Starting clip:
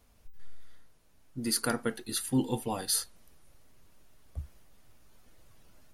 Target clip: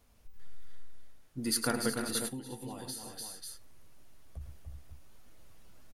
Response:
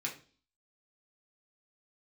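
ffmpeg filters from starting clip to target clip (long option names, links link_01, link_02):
-filter_complex "[0:a]aecho=1:1:105|294|339|367|539:0.299|0.422|0.126|0.251|0.237,asplit=3[link_01][link_02][link_03];[link_01]afade=type=out:start_time=2.27:duration=0.02[link_04];[link_02]acompressor=threshold=-38dB:ratio=6,afade=type=in:start_time=2.27:duration=0.02,afade=type=out:start_time=4.4:duration=0.02[link_05];[link_03]afade=type=in:start_time=4.4:duration=0.02[link_06];[link_04][link_05][link_06]amix=inputs=3:normalize=0,volume=-1.5dB"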